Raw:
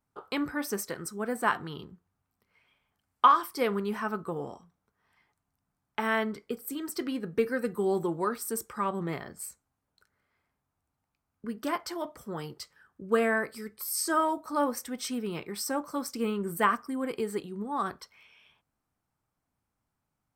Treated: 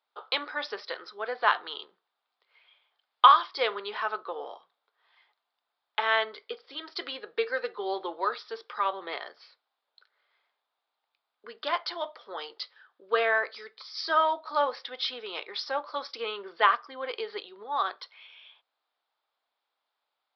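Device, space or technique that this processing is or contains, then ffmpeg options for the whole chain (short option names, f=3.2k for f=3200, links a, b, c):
musical greeting card: -af "aresample=11025,aresample=44100,highpass=f=500:w=0.5412,highpass=f=500:w=1.3066,equalizer=f=3.6k:t=o:w=0.48:g=12,volume=3dB"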